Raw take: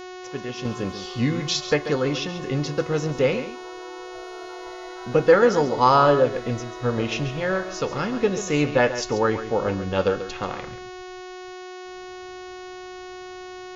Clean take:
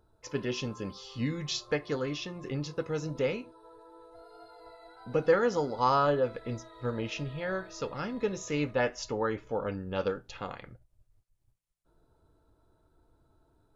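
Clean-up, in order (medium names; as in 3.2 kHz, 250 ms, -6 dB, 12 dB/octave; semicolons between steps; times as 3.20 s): de-hum 366.6 Hz, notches 19; inverse comb 137 ms -11.5 dB; gain correction -9 dB, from 0.65 s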